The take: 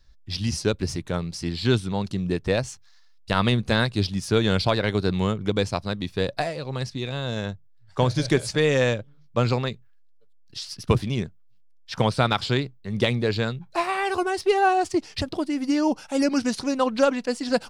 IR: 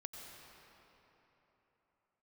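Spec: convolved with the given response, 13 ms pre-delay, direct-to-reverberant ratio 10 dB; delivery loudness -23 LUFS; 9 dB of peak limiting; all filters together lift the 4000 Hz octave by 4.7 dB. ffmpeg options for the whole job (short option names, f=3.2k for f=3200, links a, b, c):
-filter_complex "[0:a]equalizer=f=4k:t=o:g=5.5,alimiter=limit=-13dB:level=0:latency=1,asplit=2[a][b];[1:a]atrim=start_sample=2205,adelay=13[c];[b][c]afir=irnorm=-1:irlink=0,volume=-7dB[d];[a][d]amix=inputs=2:normalize=0,volume=2.5dB"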